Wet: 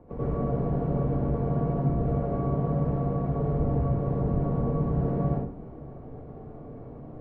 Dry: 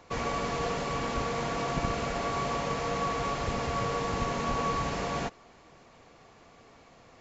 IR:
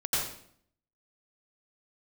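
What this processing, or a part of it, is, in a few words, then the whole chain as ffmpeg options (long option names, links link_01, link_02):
television next door: -filter_complex "[0:a]acompressor=threshold=-40dB:ratio=4,lowpass=400[link_01];[1:a]atrim=start_sample=2205[link_02];[link_01][link_02]afir=irnorm=-1:irlink=0,volume=9dB"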